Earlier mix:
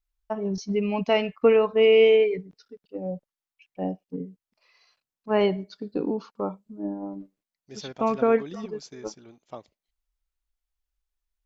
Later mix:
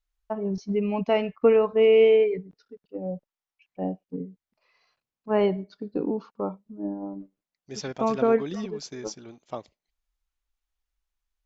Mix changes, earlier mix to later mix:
first voice: add treble shelf 2.7 kHz -11 dB; second voice +5.0 dB

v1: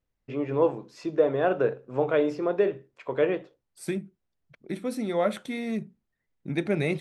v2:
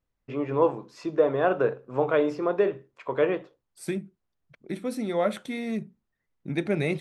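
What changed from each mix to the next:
first voice: add peaking EQ 1.1 kHz +5.5 dB 0.7 oct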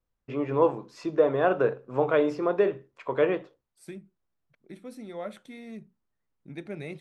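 second voice -11.5 dB

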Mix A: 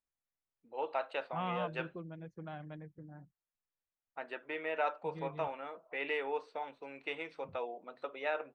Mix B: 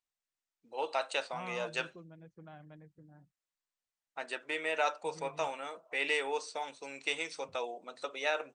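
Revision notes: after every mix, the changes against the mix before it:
first voice: remove distance through air 490 m; second voice -6.5 dB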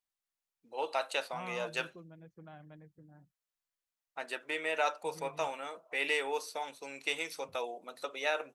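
first voice: remove brick-wall FIR low-pass 9.3 kHz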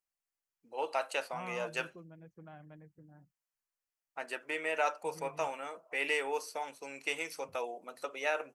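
master: add peaking EQ 3.7 kHz -11.5 dB 0.25 oct

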